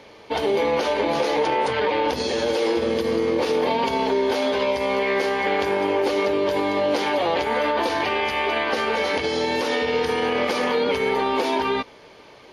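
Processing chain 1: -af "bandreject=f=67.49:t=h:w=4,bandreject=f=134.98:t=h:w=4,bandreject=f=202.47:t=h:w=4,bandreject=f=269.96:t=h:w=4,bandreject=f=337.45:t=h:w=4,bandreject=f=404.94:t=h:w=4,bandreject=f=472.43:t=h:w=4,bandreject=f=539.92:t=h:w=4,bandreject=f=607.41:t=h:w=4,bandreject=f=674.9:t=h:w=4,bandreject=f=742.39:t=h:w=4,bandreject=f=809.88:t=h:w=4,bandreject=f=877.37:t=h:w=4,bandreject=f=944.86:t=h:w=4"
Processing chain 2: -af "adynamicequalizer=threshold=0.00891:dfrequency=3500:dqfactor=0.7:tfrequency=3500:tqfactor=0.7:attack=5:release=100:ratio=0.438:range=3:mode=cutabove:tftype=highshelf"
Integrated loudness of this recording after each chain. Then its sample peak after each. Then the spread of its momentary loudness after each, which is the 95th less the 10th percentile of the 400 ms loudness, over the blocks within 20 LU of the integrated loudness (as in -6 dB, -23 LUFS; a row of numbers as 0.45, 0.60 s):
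-22.5, -22.5 LUFS; -9.5, -9.5 dBFS; 1, 2 LU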